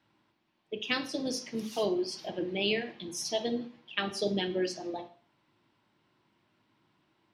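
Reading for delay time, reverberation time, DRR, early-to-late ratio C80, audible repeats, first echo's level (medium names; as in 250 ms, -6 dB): no echo, 0.45 s, 8.5 dB, 17.5 dB, no echo, no echo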